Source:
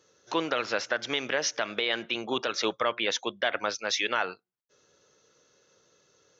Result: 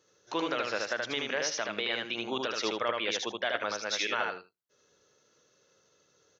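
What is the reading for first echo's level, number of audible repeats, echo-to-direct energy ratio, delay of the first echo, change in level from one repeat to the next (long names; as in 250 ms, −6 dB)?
−3.0 dB, 2, −3.0 dB, 77 ms, −16.0 dB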